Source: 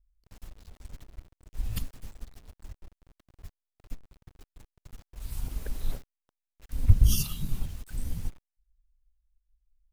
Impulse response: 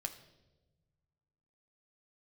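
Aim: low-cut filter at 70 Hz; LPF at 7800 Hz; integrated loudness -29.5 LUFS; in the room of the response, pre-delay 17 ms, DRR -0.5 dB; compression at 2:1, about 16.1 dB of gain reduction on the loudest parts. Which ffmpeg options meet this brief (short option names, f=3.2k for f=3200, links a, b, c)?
-filter_complex "[0:a]highpass=70,lowpass=7.8k,acompressor=threshold=-46dB:ratio=2,asplit=2[a][b];[1:a]atrim=start_sample=2205,adelay=17[c];[b][c]afir=irnorm=-1:irlink=0,volume=1.5dB[d];[a][d]amix=inputs=2:normalize=0,volume=16dB"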